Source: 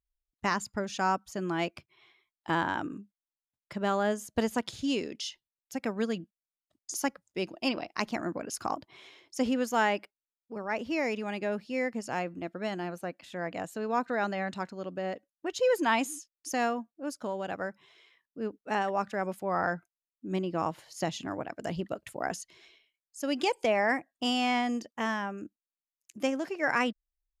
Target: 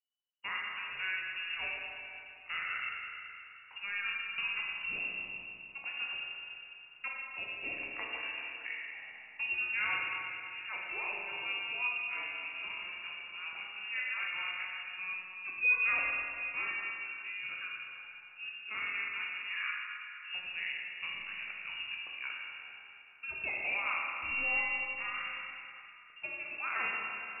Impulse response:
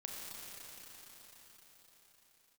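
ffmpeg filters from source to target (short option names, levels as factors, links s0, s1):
-filter_complex "[0:a]lowpass=f=2600:t=q:w=0.5098,lowpass=f=2600:t=q:w=0.6013,lowpass=f=2600:t=q:w=0.9,lowpass=f=2600:t=q:w=2.563,afreqshift=-3000[s0];[1:a]atrim=start_sample=2205,asetrate=83790,aresample=44100[s1];[s0][s1]afir=irnorm=-1:irlink=0"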